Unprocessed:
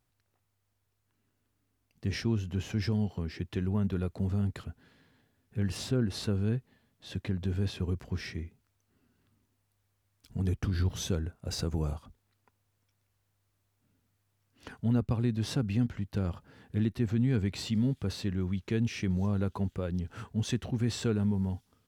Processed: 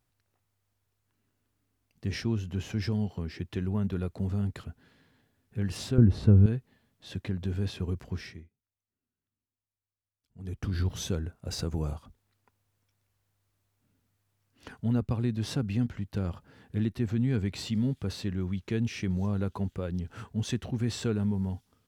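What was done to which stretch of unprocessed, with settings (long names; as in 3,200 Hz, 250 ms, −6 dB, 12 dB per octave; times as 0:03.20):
0:05.98–0:06.46: spectral tilt −4 dB per octave
0:08.12–0:10.73: duck −21.5 dB, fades 0.38 s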